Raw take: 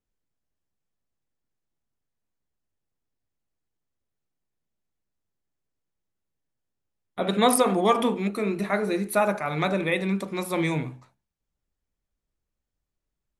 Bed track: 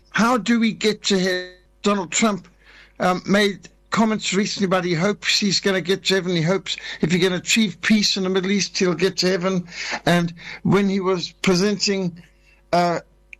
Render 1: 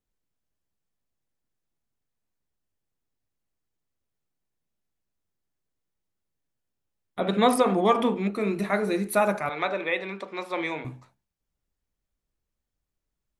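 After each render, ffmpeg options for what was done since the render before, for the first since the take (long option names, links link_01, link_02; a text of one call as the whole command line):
ffmpeg -i in.wav -filter_complex "[0:a]asettb=1/sr,asplit=3[link_01][link_02][link_03];[link_01]atrim=end=7.204[link_04];[link_02]atrim=start=7.2:end=8.41,asetpts=PTS-STARTPTS,afade=type=in:duration=0.004:curve=qsin,afade=type=out:start_time=1.206:duration=0.004:curve=qsin,lowpass=frequency=3600:poles=1[link_05];[link_03]atrim=start=8.406[link_06];[link_04][link_05]acrossfade=duration=0.004:curve1=hsin:curve2=qsin[link_07];[link_07][link_06]acrossfade=duration=0.004:curve1=qsin:curve2=hsin,asettb=1/sr,asplit=3[link_08][link_09][link_10];[link_08]atrim=end=9.494[link_11];[link_09]atrim=start=9.49:end=10.85,asetpts=PTS-STARTPTS,afade=type=in:duration=0.004:curve=qsin,afade=type=out:start_time=1.356:duration=0.004:curve=qsin,highpass=450,lowpass=3800[link_12];[link_10]atrim=start=10.846[link_13];[link_11][link_12]acrossfade=duration=0.004:curve1=hsin:curve2=qsin[link_14];[link_14][link_13]acrossfade=duration=0.004:curve1=qsin:curve2=hsin" out.wav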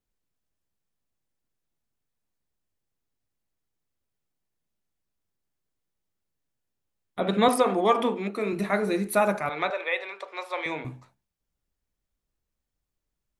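ffmpeg -i in.wav -filter_complex "[0:a]asettb=1/sr,asplit=3[link_01][link_02][link_03];[link_01]atrim=end=7.484[link_04];[link_02]atrim=start=7.48:end=8.53,asetpts=PTS-STARTPTS,afade=type=in:duration=0.004:curve=qsin,afade=type=out:start_time=1.046:duration=0.004:curve=qsin,highpass=250[link_05];[link_03]atrim=start=8.526[link_06];[link_04][link_05]acrossfade=duration=0.004:curve1=hsin:curve2=qsin[link_07];[link_07][link_06]acrossfade=duration=0.004:curve1=qsin:curve2=hsin,asettb=1/sr,asplit=3[link_08][link_09][link_10];[link_08]atrim=end=9.704[link_11];[link_09]atrim=start=9.7:end=10.66,asetpts=PTS-STARTPTS,afade=type=in:duration=0.004:curve=qsin,afade=type=out:start_time=0.956:duration=0.004:curve=qsin,highpass=frequency=480:width=0.5412,highpass=frequency=480:width=1.3066[link_12];[link_10]atrim=start=10.656[link_13];[link_11][link_12]acrossfade=duration=0.004:curve1=hsin:curve2=qsin[link_14];[link_14][link_13]acrossfade=duration=0.004:curve1=qsin:curve2=hsin" out.wav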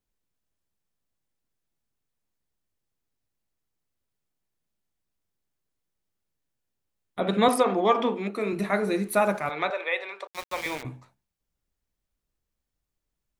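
ffmpeg -i in.wav -filter_complex "[0:a]asettb=1/sr,asplit=3[link_01][link_02][link_03];[link_01]atrim=end=7.634[link_04];[link_02]atrim=start=7.63:end=8.14,asetpts=PTS-STARTPTS,afade=type=in:duration=0.004:curve=qsin,afade=type=out:start_time=0.506:duration=0.004:curve=qsin,lowpass=frequency=6400:width=0.5412,lowpass=frequency=6400:width=1.3066[link_05];[link_03]atrim=start=8.136[link_06];[link_04][link_05]acrossfade=duration=0.004:curve1=hsin:curve2=qsin[link_07];[link_07][link_06]acrossfade=duration=0.004:curve1=qsin:curve2=hsin,asplit=3[link_08][link_09][link_10];[link_08]afade=type=out:start_time=9.03:duration=0.02[link_11];[link_09]aeval=exprs='sgn(val(0))*max(abs(val(0))-0.00211,0)':channel_layout=same,afade=type=in:start_time=9.03:duration=0.02,afade=type=out:start_time=9.5:duration=0.02[link_12];[link_10]afade=type=in:start_time=9.5:duration=0.02[link_13];[link_11][link_12][link_13]amix=inputs=3:normalize=0,asettb=1/sr,asplit=3[link_14][link_15][link_16];[link_14]atrim=end=10.274[link_17];[link_15]atrim=start=10.27:end=10.83,asetpts=PTS-STARTPTS,afade=type=in:duration=0.004:curve=qsin,afade=type=out:start_time=0.556:duration=0.004:curve=qsin,aeval=exprs='val(0)*gte(abs(val(0)),0.0224)':channel_layout=same[link_18];[link_16]atrim=start=10.826[link_19];[link_17][link_18]acrossfade=duration=0.004:curve1=hsin:curve2=qsin[link_20];[link_20][link_19]acrossfade=duration=0.004:curve1=qsin:curve2=hsin" out.wav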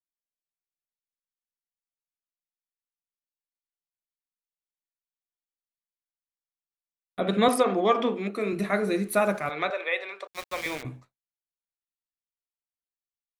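ffmpeg -i in.wav -af "agate=range=-33dB:threshold=-42dB:ratio=3:detection=peak,equalizer=frequency=900:width_type=o:width=0.25:gain=-7.5" out.wav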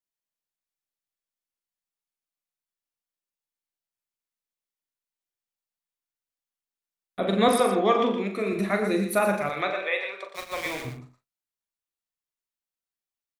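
ffmpeg -i in.wav -filter_complex "[0:a]asplit=2[link_01][link_02];[link_02]adelay=41,volume=-8dB[link_03];[link_01][link_03]amix=inputs=2:normalize=0,asplit=2[link_04][link_05];[link_05]aecho=0:1:89|117:0.168|0.376[link_06];[link_04][link_06]amix=inputs=2:normalize=0" out.wav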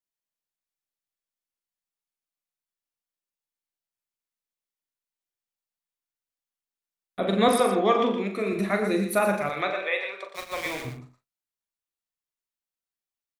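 ffmpeg -i in.wav -af anull out.wav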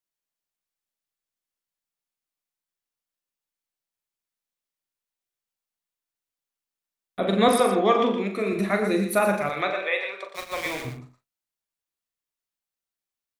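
ffmpeg -i in.wav -af "volume=1.5dB" out.wav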